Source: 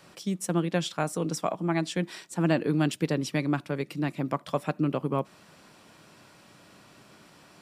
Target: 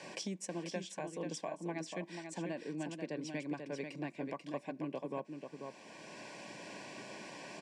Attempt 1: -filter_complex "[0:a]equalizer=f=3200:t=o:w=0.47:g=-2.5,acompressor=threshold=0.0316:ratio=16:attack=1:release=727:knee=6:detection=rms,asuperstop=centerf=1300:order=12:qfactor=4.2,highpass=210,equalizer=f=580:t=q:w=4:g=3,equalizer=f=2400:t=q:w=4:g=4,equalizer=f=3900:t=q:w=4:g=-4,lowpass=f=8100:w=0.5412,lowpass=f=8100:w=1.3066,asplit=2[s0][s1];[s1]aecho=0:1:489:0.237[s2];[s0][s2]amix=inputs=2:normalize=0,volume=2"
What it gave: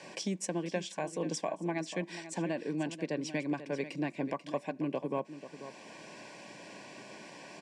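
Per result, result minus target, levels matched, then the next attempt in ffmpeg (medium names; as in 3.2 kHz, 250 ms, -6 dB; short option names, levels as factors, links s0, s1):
compression: peak gain reduction -6.5 dB; echo-to-direct -6.5 dB
-filter_complex "[0:a]equalizer=f=3200:t=o:w=0.47:g=-2.5,acompressor=threshold=0.0141:ratio=16:attack=1:release=727:knee=6:detection=rms,asuperstop=centerf=1300:order=12:qfactor=4.2,highpass=210,equalizer=f=580:t=q:w=4:g=3,equalizer=f=2400:t=q:w=4:g=4,equalizer=f=3900:t=q:w=4:g=-4,lowpass=f=8100:w=0.5412,lowpass=f=8100:w=1.3066,asplit=2[s0][s1];[s1]aecho=0:1:489:0.237[s2];[s0][s2]amix=inputs=2:normalize=0,volume=2"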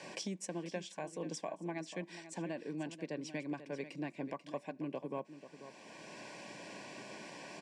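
echo-to-direct -6.5 dB
-filter_complex "[0:a]equalizer=f=3200:t=o:w=0.47:g=-2.5,acompressor=threshold=0.0141:ratio=16:attack=1:release=727:knee=6:detection=rms,asuperstop=centerf=1300:order=12:qfactor=4.2,highpass=210,equalizer=f=580:t=q:w=4:g=3,equalizer=f=2400:t=q:w=4:g=4,equalizer=f=3900:t=q:w=4:g=-4,lowpass=f=8100:w=0.5412,lowpass=f=8100:w=1.3066,asplit=2[s0][s1];[s1]aecho=0:1:489:0.501[s2];[s0][s2]amix=inputs=2:normalize=0,volume=2"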